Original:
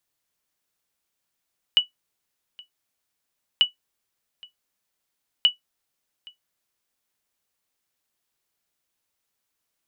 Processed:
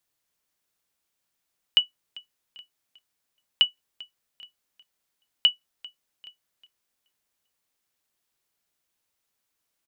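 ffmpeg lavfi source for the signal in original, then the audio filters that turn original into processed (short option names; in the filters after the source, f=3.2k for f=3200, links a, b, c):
-f lavfi -i "aevalsrc='0.398*(sin(2*PI*2950*mod(t,1.84))*exp(-6.91*mod(t,1.84)/0.13)+0.0501*sin(2*PI*2950*max(mod(t,1.84)-0.82,0))*exp(-6.91*max(mod(t,1.84)-0.82,0)/0.13))':d=5.52:s=44100"
-af "aecho=1:1:395|790|1185:0.075|0.0322|0.0139"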